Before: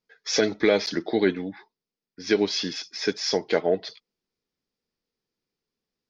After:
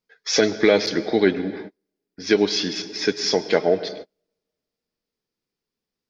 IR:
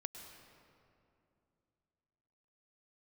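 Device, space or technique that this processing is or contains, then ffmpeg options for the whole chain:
keyed gated reverb: -filter_complex "[0:a]asplit=3[link_01][link_02][link_03];[1:a]atrim=start_sample=2205[link_04];[link_02][link_04]afir=irnorm=-1:irlink=0[link_05];[link_03]apad=whole_len=268886[link_06];[link_05][link_06]sidechaingate=range=-41dB:threshold=-50dB:ratio=16:detection=peak,volume=-1dB[link_07];[link_01][link_07]amix=inputs=2:normalize=0"

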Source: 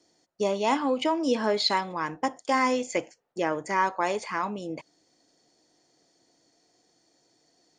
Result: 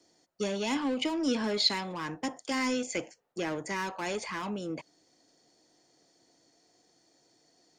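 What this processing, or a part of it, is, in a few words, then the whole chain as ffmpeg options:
one-band saturation: -filter_complex "[0:a]acrossover=split=350|2000[link_01][link_02][link_03];[link_02]asoftclip=type=tanh:threshold=-37dB[link_04];[link_01][link_04][link_03]amix=inputs=3:normalize=0"

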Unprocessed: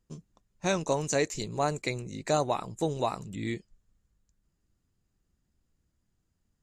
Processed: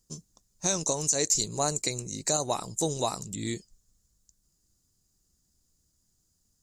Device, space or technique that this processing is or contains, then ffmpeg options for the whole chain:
over-bright horn tweeter: -filter_complex "[0:a]highshelf=frequency=3800:width_type=q:width=1.5:gain=13.5,alimiter=limit=-13dB:level=0:latency=1:release=136,asettb=1/sr,asplit=3[link_01][link_02][link_03];[link_01]atrim=end=1.524[link_04];[link_02]atrim=start=1.52:end=2.61,asetpts=PTS-STARTPTS,afade=type=in:duration=0.004:curve=qsin,afade=type=out:start_time=1.086:duration=0.004:curve=qsin,bandreject=frequency=3500:width=11[link_05];[link_03]atrim=start=2.606[link_06];[link_04][link_05]acrossfade=duration=0.004:curve1=hsin:curve2=qsin[link_07];[link_07][link_06]acrossfade=duration=0.004:curve1=qsin:curve2=hsin"

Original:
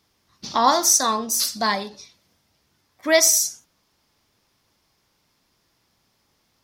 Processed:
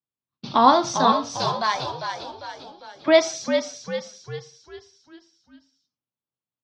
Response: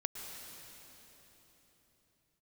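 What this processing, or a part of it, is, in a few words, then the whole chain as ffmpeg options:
frequency-shifting delay pedal into a guitar cabinet: -filter_complex "[0:a]agate=range=-33dB:threshold=-43dB:ratio=3:detection=peak,asettb=1/sr,asplit=3[link_01][link_02][link_03];[link_01]atrim=end=1.124[link_04];[link_02]atrim=start=1.12:end=3.08,asetpts=PTS-STARTPTS,afade=type=in:duration=0.004:curve=qsin,afade=type=out:start_time=1.956:duration=0.004:curve=qsin,highpass=870[link_05];[link_03]atrim=start=3.076[link_06];[link_04][link_05]acrossfade=duration=0.004:curve1=hsin:curve2=qsin[link_07];[link_07][link_06]acrossfade=duration=0.004:curve1=qsin:curve2=hsin,asplit=7[link_08][link_09][link_10][link_11][link_12][link_13][link_14];[link_09]adelay=399,afreqshift=-63,volume=-7dB[link_15];[link_10]adelay=798,afreqshift=-126,volume=-13.4dB[link_16];[link_11]adelay=1197,afreqshift=-189,volume=-19.8dB[link_17];[link_12]adelay=1596,afreqshift=-252,volume=-26.1dB[link_18];[link_13]adelay=1995,afreqshift=-315,volume=-32.5dB[link_19];[link_14]adelay=2394,afreqshift=-378,volume=-38.9dB[link_20];[link_08][link_15][link_16][link_17][link_18][link_19][link_20]amix=inputs=7:normalize=0,highpass=100,equalizer=frequency=130:width_type=q:width=4:gain=10,equalizer=frequency=260:width_type=q:width=4:gain=4,equalizer=frequency=1900:width_type=q:width=4:gain=-9,lowpass=frequency=3700:width=0.5412,lowpass=frequency=3700:width=1.3066,volume=2.5dB"

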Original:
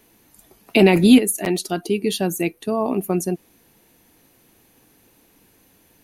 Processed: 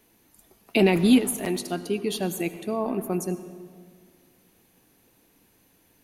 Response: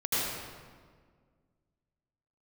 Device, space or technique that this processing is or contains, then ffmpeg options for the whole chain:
saturated reverb return: -filter_complex "[0:a]asplit=2[link_01][link_02];[1:a]atrim=start_sample=2205[link_03];[link_02][link_03]afir=irnorm=-1:irlink=0,asoftclip=type=tanh:threshold=-7dB,volume=-19.5dB[link_04];[link_01][link_04]amix=inputs=2:normalize=0,volume=-6.5dB"

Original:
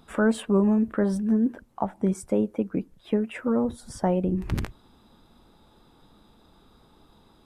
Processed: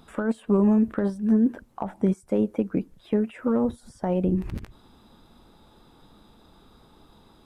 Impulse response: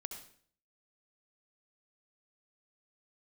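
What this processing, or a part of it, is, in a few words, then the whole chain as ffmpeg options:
de-esser from a sidechain: -filter_complex "[0:a]asplit=2[link_01][link_02];[link_02]highpass=4600,apad=whole_len=328800[link_03];[link_01][link_03]sidechaincompress=threshold=-58dB:ratio=4:attack=3.1:release=63,volume=2.5dB"

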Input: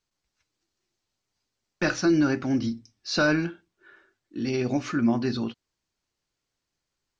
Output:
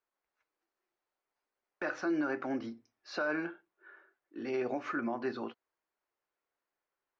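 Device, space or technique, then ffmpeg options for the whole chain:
DJ mixer with the lows and highs turned down: -filter_complex "[0:a]acrossover=split=370 2100:gain=0.0708 1 0.1[link_01][link_02][link_03];[link_01][link_02][link_03]amix=inputs=3:normalize=0,alimiter=level_in=0.5dB:limit=-24dB:level=0:latency=1:release=102,volume=-0.5dB"

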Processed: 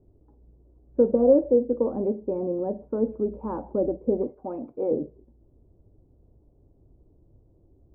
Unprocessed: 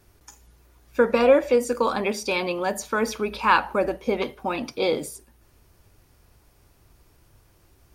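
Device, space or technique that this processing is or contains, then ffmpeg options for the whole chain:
under water: -filter_complex "[0:a]asettb=1/sr,asplit=3[link_01][link_02][link_03];[link_01]atrim=end=4.274[link_04];[link_02]atrim=start=4.27:end=4.91,asetpts=PTS-STARTPTS,afade=type=in:duration=0.004:curve=qsin,afade=type=out:start_time=0.636:duration=0.004:curve=qsin,tiltshelf=frequency=650:gain=-9.5[link_05];[link_03]atrim=start=4.906[link_06];[link_04][link_05]acrossfade=duration=0.004:curve1=hsin:curve2=qsin[link_07];[link_07][link_06]acrossfade=duration=0.004:curve1=qsin:curve2=hsin,lowpass=frequency=580:width=0.5412,lowpass=frequency=580:width=1.3066,equalizer=frequency=290:width_type=o:width=0.56:gain=4"

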